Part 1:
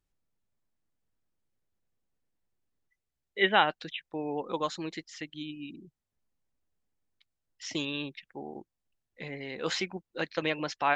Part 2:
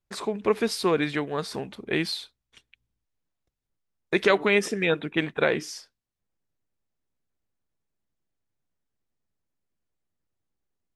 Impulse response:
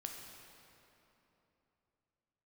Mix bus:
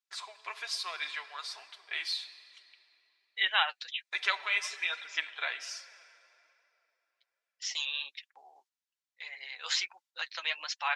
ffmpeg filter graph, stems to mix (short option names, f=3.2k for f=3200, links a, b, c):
-filter_complex "[0:a]agate=range=-9dB:threshold=-52dB:ratio=16:detection=peak,volume=-3dB[a];[1:a]highshelf=f=9k:g=-11.5,aecho=1:1:3:0.35,volume=-11dB,asplit=3[b][c][d];[c]volume=-4dB[e];[d]apad=whole_len=483272[f];[a][f]sidechaincompress=threshold=-49dB:ratio=8:attack=16:release=150[g];[2:a]atrim=start_sample=2205[h];[e][h]afir=irnorm=-1:irlink=0[i];[g][b][i]amix=inputs=3:normalize=0,highpass=f=820:w=0.5412,highpass=f=820:w=1.3066,equalizer=f=5k:w=0.43:g=11.5,flanger=delay=3.3:depth=6.2:regen=32:speed=1.2:shape=triangular"